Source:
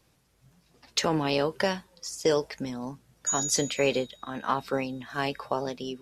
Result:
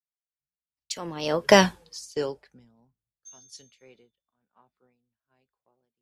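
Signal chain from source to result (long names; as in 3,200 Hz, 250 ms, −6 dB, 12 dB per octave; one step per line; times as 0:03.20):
source passing by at 0:01.63, 25 m/s, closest 3 metres
multiband upward and downward expander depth 100%
level +4.5 dB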